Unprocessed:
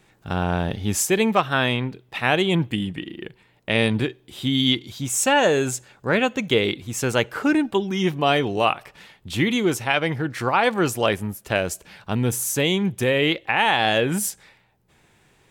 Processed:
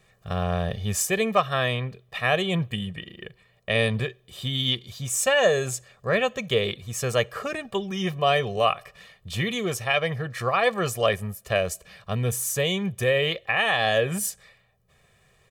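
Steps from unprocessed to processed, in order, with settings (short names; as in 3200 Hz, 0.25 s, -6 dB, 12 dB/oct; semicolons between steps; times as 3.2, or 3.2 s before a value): comb 1.7 ms, depth 87%; gain -5 dB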